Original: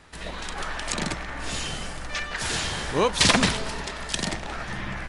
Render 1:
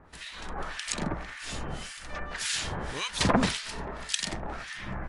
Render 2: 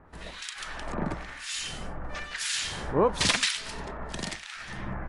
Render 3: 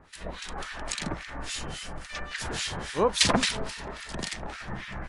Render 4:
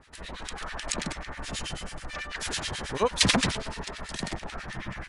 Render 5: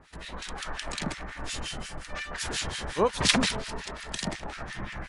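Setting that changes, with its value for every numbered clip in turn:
harmonic tremolo, rate: 1.8 Hz, 1 Hz, 3.6 Hz, 9.2 Hz, 5.6 Hz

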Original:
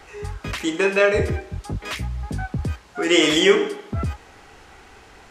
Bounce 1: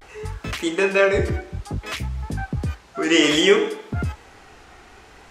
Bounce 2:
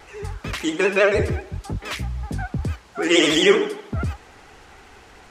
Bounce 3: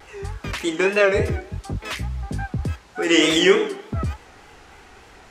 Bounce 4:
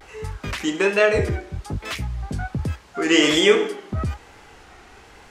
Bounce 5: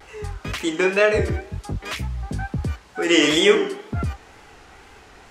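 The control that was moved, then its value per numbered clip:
vibrato, rate: 0.58 Hz, 13 Hz, 3.4 Hz, 1.2 Hz, 2.1 Hz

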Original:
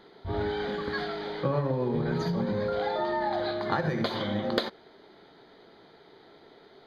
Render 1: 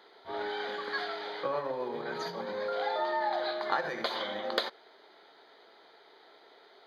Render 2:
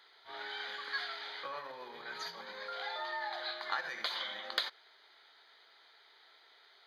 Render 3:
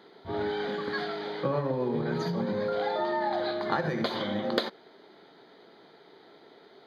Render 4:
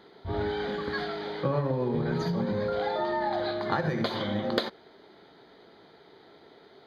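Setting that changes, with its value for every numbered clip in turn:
high-pass, cutoff frequency: 560 Hz, 1.5 kHz, 160 Hz, 40 Hz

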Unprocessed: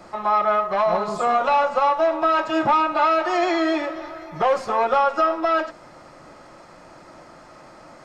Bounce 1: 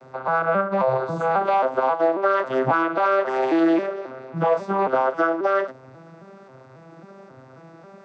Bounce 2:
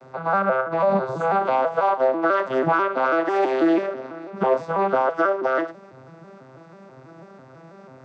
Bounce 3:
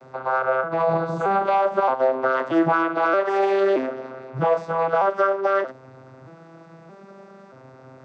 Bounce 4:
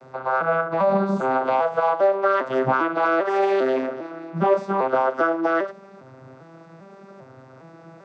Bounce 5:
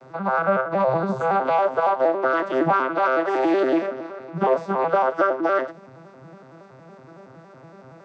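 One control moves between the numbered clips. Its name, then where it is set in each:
vocoder on a broken chord, a note every: 270 ms, 164 ms, 626 ms, 400 ms, 93 ms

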